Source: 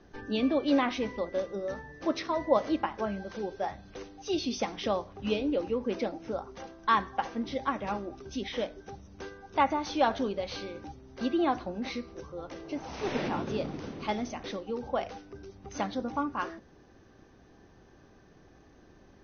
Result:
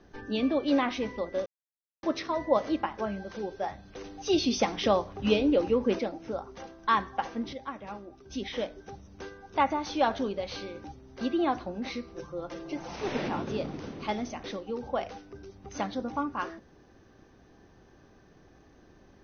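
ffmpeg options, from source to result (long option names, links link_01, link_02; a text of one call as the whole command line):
ffmpeg -i in.wav -filter_complex "[0:a]asettb=1/sr,asplit=3[link_01][link_02][link_03];[link_01]atrim=end=4.044[link_04];[link_02]atrim=start=4.04:end=5.99,asetpts=PTS-STARTPTS,afade=type=in:duration=0.004:curve=qsin,afade=type=out:start_time=1.946:duration=0.004:curve=qsin,acontrast=31[link_05];[link_03]atrim=start=5.986[link_06];[link_04][link_05]acrossfade=duration=0.004:curve1=hsin:curve2=qsin[link_07];[link_07][link_06]acrossfade=duration=0.004:curve1=qsin:curve2=hsin,asettb=1/sr,asplit=3[link_08][link_09][link_10];[link_08]atrim=end=12.144[link_11];[link_09]atrim=start=12.14:end=12.96,asetpts=PTS-STARTPTS,afade=type=in:duration=0.004:curve=qsin,afade=type=out:start_time=0.816:duration=0.004:curve=qsin,aecho=1:1:5.8:0.65,atrim=end_sample=36162[link_12];[link_10]atrim=start=12.956[link_13];[link_11][link_12]acrossfade=duration=0.004:curve1=hsin:curve2=qsin[link_14];[link_14][link_13]acrossfade=duration=0.004:curve1=qsin:curve2=hsin,asplit=5[link_15][link_16][link_17][link_18][link_19];[link_15]atrim=end=1.46,asetpts=PTS-STARTPTS,afade=type=out:start_time=1.456:duration=0.004:curve=hsin[link_20];[link_16]atrim=start=1.46:end=2.03,asetpts=PTS-STARTPTS,volume=0[link_21];[link_17]atrim=start=2.03:end=7.532,asetpts=PTS-STARTPTS,afade=type=in:duration=0.004:curve=hsin[link_22];[link_18]atrim=start=7.528:end=8.302,asetpts=PTS-STARTPTS,volume=-7.5dB[link_23];[link_19]atrim=start=8.298[link_24];[link_20][link_21][link_22]concat=n=3:v=0:a=1[link_25];[link_25][link_23]acrossfade=duration=0.004:curve1=hsin:curve2=hsin[link_26];[link_26][link_24]acrossfade=duration=0.004:curve1=hsin:curve2=hsin" out.wav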